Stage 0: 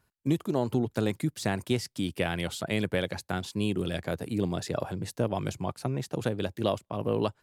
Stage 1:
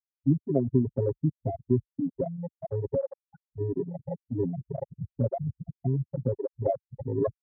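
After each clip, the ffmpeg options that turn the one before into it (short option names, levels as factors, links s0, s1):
-af "aecho=1:1:7.4:0.96,afftfilt=real='re*gte(hypot(re,im),0.251)':imag='im*gte(hypot(re,im),0.251)':win_size=1024:overlap=0.75,afwtdn=0.0112"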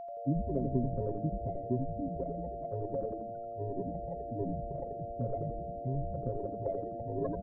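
-filter_complex "[0:a]aeval=exprs='val(0)+0.0251*sin(2*PI*690*n/s)':c=same,asplit=2[s0][s1];[s1]asplit=8[s2][s3][s4][s5][s6][s7][s8][s9];[s2]adelay=84,afreqshift=-110,volume=0.596[s10];[s3]adelay=168,afreqshift=-220,volume=0.339[s11];[s4]adelay=252,afreqshift=-330,volume=0.193[s12];[s5]adelay=336,afreqshift=-440,volume=0.111[s13];[s6]adelay=420,afreqshift=-550,volume=0.0631[s14];[s7]adelay=504,afreqshift=-660,volume=0.0359[s15];[s8]adelay=588,afreqshift=-770,volume=0.0204[s16];[s9]adelay=672,afreqshift=-880,volume=0.0116[s17];[s10][s11][s12][s13][s14][s15][s16][s17]amix=inputs=8:normalize=0[s18];[s0][s18]amix=inputs=2:normalize=0,volume=0.376"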